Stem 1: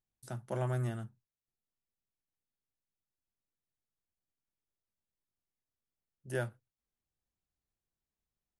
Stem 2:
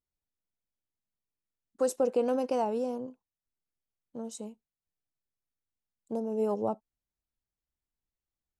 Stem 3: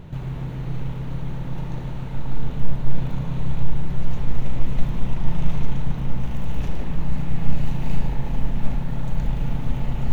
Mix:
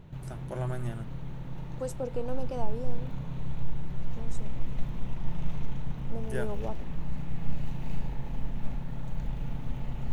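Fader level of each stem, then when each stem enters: -0.5 dB, -7.5 dB, -10.0 dB; 0.00 s, 0.00 s, 0.00 s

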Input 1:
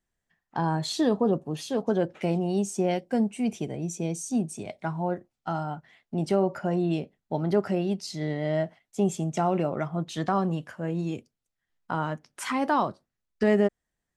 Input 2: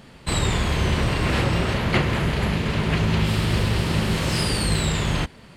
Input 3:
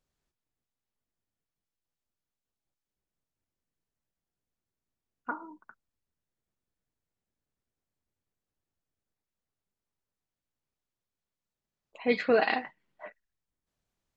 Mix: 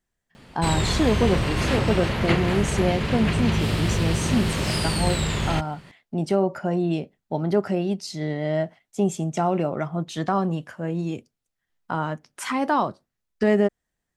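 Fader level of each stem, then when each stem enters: +2.5 dB, -2.0 dB, mute; 0.00 s, 0.35 s, mute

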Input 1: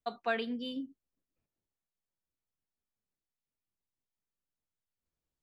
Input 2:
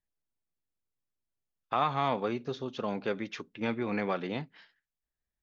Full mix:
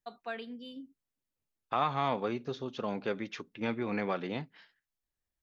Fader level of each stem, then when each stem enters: -7.0 dB, -1.5 dB; 0.00 s, 0.00 s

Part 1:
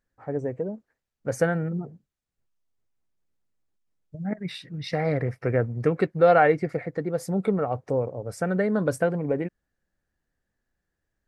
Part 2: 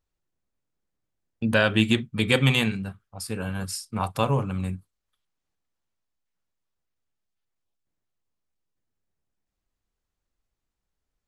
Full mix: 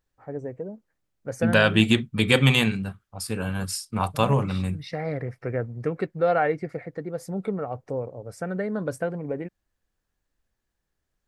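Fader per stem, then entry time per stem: -4.5 dB, +2.0 dB; 0.00 s, 0.00 s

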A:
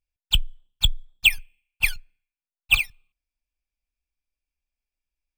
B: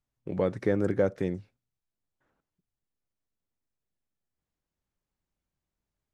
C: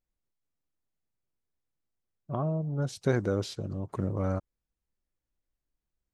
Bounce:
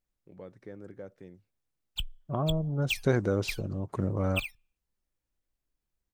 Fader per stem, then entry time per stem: -14.5 dB, -19.0 dB, +1.0 dB; 1.65 s, 0.00 s, 0.00 s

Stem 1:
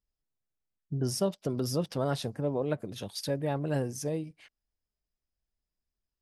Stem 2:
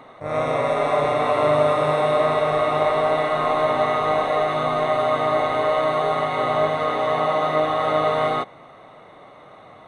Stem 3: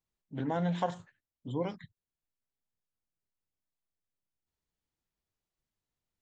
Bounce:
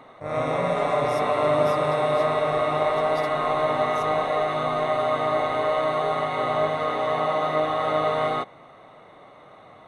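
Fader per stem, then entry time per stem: -10.5 dB, -3.0 dB, -3.0 dB; 0.00 s, 0.00 s, 0.00 s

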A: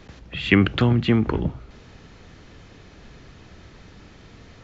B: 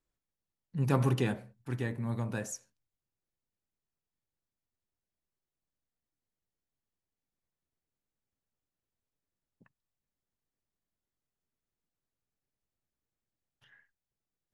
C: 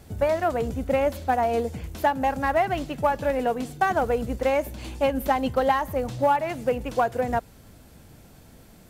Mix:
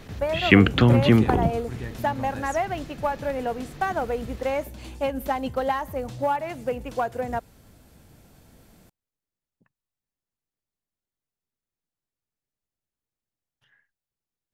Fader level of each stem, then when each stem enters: +1.5 dB, -1.5 dB, -3.5 dB; 0.00 s, 0.00 s, 0.00 s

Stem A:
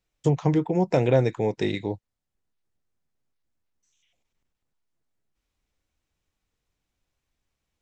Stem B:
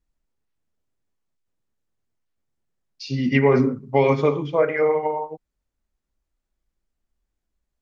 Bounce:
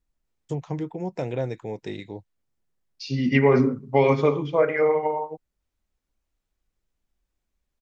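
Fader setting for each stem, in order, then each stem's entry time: -8.0 dB, -1.0 dB; 0.25 s, 0.00 s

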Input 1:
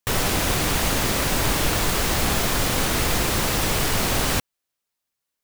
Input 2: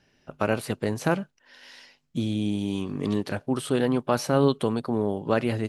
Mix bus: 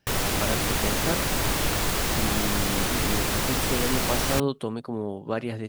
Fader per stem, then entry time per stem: -3.5 dB, -5.0 dB; 0.00 s, 0.00 s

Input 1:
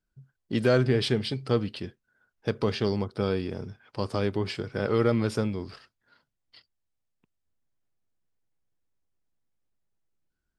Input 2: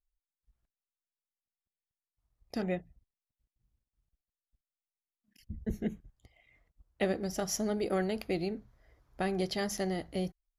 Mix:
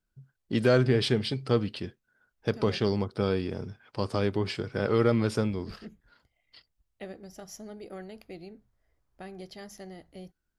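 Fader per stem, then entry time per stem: 0.0 dB, -11.0 dB; 0.00 s, 0.00 s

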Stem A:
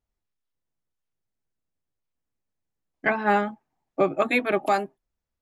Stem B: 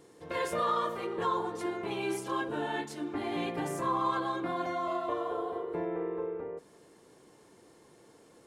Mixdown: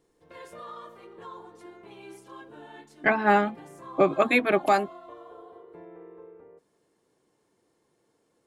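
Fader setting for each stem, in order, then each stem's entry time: +1.0 dB, -12.5 dB; 0.00 s, 0.00 s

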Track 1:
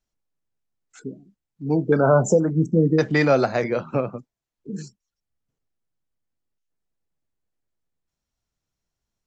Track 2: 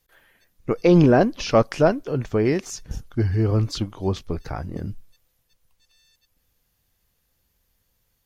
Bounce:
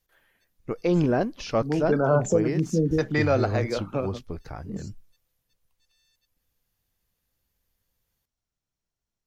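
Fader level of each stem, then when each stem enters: -5.0 dB, -7.5 dB; 0.00 s, 0.00 s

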